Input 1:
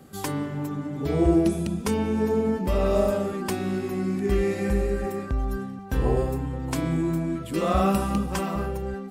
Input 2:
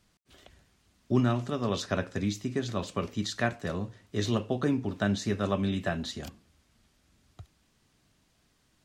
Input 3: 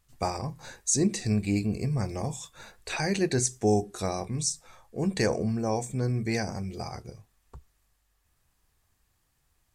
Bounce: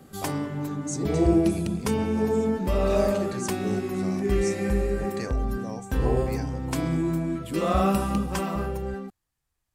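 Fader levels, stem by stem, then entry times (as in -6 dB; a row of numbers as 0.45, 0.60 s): -0.5 dB, off, -9.5 dB; 0.00 s, off, 0.00 s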